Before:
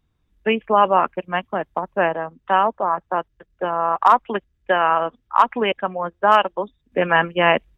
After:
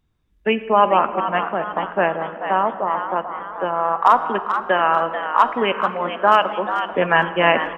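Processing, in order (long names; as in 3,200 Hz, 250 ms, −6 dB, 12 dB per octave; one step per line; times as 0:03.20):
0:02.14–0:03.16: high-shelf EQ 2,000 Hz −10 dB
echo with shifted repeats 438 ms, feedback 42%, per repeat +120 Hz, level −9 dB
on a send at −11.5 dB: convolution reverb RT60 2.6 s, pre-delay 5 ms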